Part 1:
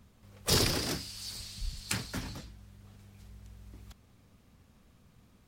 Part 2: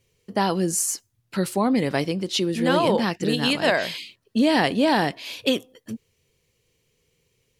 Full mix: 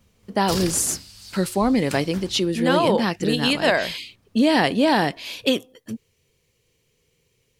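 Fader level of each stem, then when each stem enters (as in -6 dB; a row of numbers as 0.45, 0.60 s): -1.5, +1.5 dB; 0.00, 0.00 s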